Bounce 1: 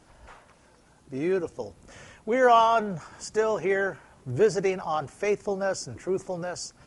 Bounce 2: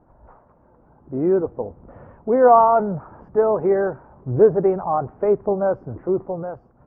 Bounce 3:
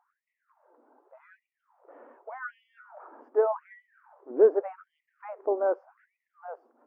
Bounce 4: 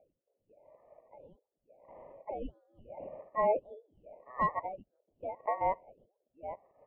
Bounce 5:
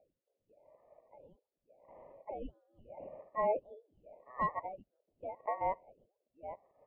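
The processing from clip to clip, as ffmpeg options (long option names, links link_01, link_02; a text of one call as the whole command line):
ffmpeg -i in.wav -af "lowpass=frequency=1100:width=0.5412,lowpass=frequency=1100:width=1.3066,dynaudnorm=framelen=230:gausssize=7:maxgain=6dB,volume=2dB" out.wav
ffmpeg -i in.wav -af "afftfilt=real='re*gte(b*sr/1024,220*pow(1900/220,0.5+0.5*sin(2*PI*0.85*pts/sr)))':imag='im*gte(b*sr/1024,220*pow(1900/220,0.5+0.5*sin(2*PI*0.85*pts/sr)))':win_size=1024:overlap=0.75,volume=-5.5dB" out.wav
ffmpeg -i in.wav -af "aeval=exprs='val(0)*sin(2*PI*1500*n/s)':channel_layout=same,asoftclip=type=hard:threshold=-15.5dB,lowpass=frequency=580:width_type=q:width=4.9,volume=2.5dB" out.wav
ffmpeg -i in.wav -af "aresample=11025,aresample=44100,volume=-3.5dB" out.wav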